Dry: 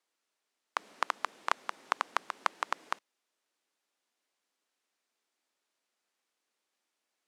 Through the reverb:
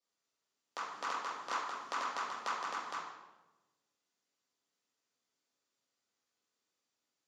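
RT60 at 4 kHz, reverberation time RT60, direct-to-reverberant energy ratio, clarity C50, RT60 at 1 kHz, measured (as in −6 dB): 0.80 s, 1.1 s, −8.5 dB, 0.0 dB, 0.95 s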